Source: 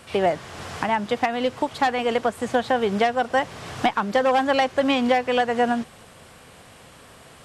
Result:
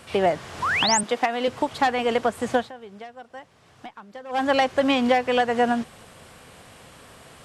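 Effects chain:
0:00.62–0:01.01: sound drawn into the spectrogram rise 920–9,300 Hz −23 dBFS
0:01.03–0:01.48: high-pass filter 260 Hz 12 dB per octave
0:02.56–0:04.44: duck −19.5 dB, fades 0.15 s

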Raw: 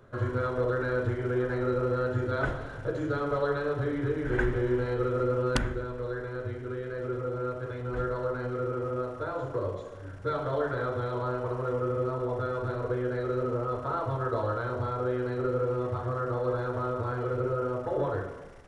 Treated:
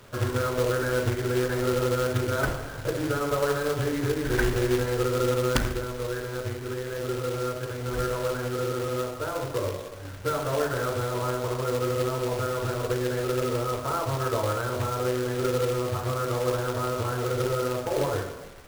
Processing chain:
log-companded quantiser 4 bits
level +2.5 dB

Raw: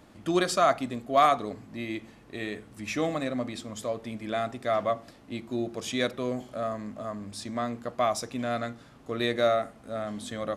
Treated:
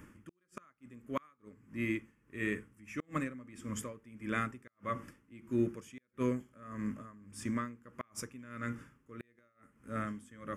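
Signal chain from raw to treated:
phaser with its sweep stopped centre 1,700 Hz, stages 4
gate with flip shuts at −22 dBFS, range −38 dB
tremolo with a sine in dB 1.6 Hz, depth 20 dB
level +3.5 dB

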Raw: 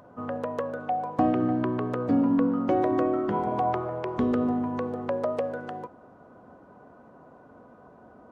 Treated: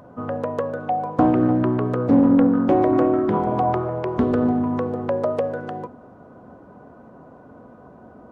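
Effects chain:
low-shelf EQ 450 Hz +7 dB
hum removal 48.91 Hz, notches 9
highs frequency-modulated by the lows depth 0.29 ms
level +3 dB

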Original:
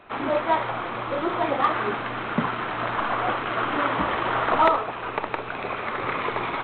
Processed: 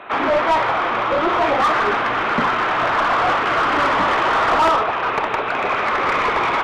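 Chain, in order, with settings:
mid-hump overdrive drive 22 dB, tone 2,200 Hz, clips at −8.5 dBFS

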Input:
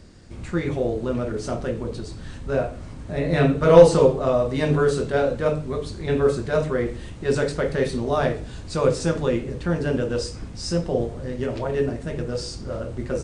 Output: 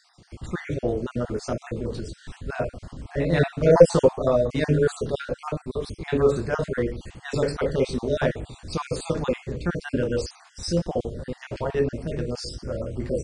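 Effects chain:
time-frequency cells dropped at random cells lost 38%

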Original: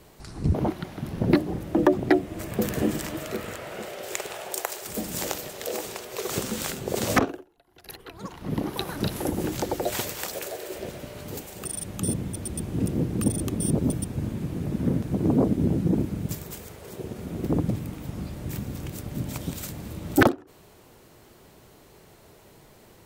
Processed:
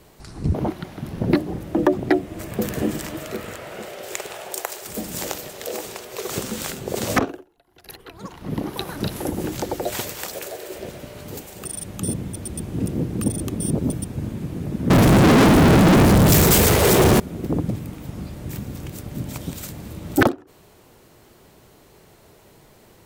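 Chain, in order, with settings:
0:14.90–0:17.20: fuzz pedal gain 45 dB, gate −53 dBFS
level +1.5 dB

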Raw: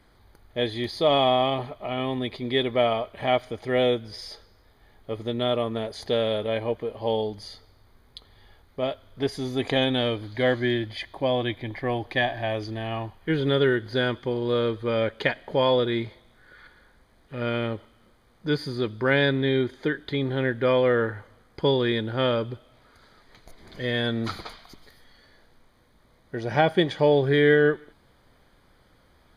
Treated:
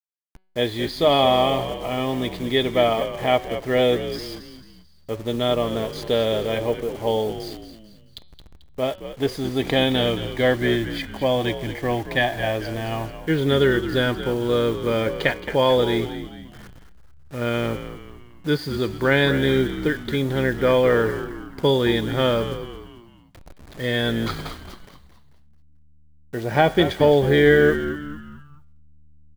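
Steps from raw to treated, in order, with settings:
hold until the input has moved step −41.5 dBFS
hum removal 187.4 Hz, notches 26
echo with shifted repeats 220 ms, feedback 43%, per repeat −76 Hz, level −11 dB
level +3.5 dB

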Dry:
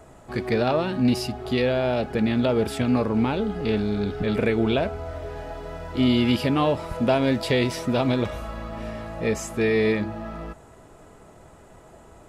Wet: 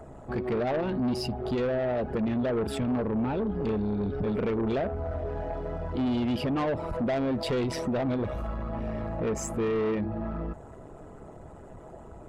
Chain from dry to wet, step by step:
spectral envelope exaggerated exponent 1.5
dynamic equaliser 4,500 Hz, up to −3 dB, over −45 dBFS, Q 1
in parallel at +3 dB: downward compressor, threshold −29 dBFS, peak gain reduction 12.5 dB
on the sum: amplitude modulation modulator 140 Hz, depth 30%
soft clipping −21 dBFS, distortion −10 dB
level −2.5 dB

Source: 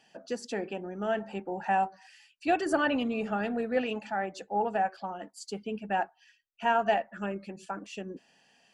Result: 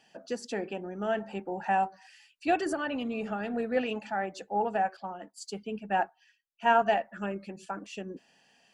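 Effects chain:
0:02.68–0:03.54: downward compressor 6 to 1, threshold −29 dBFS, peak gain reduction 8 dB
0:04.97–0:06.82: multiband upward and downward expander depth 40%

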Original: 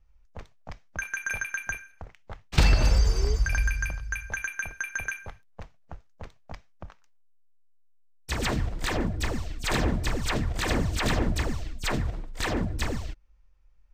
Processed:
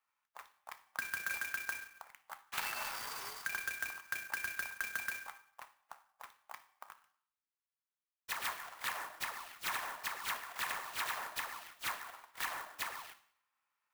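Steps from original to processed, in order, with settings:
in parallel at −4 dB: gain into a clipping stage and back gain 18.5 dB
on the sum: Chebyshev high-pass filter 980 Hz, order 3
high-shelf EQ 3,900 Hz −11 dB
on a send at −10.5 dB: convolution reverb RT60 0.60 s, pre-delay 3 ms
on the sum: downward compressor 3 to 1, threshold −34 dBFS, peak gain reduction 8 dB
converter with an unsteady clock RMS 0.037 ms
level −2.5 dB

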